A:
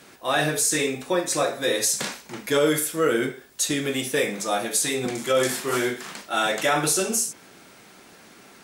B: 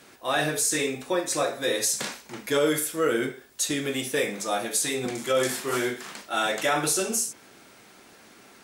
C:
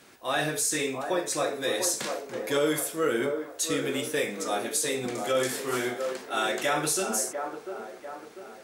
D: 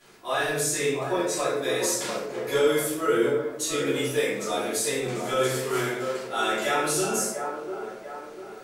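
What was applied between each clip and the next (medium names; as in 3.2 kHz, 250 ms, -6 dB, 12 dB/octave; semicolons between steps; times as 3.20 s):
peaking EQ 170 Hz -5.5 dB 0.26 oct; trim -2.5 dB
feedback echo behind a band-pass 695 ms, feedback 45%, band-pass 650 Hz, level -5 dB; trim -2.5 dB
simulated room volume 120 m³, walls mixed, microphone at 3 m; trim -9 dB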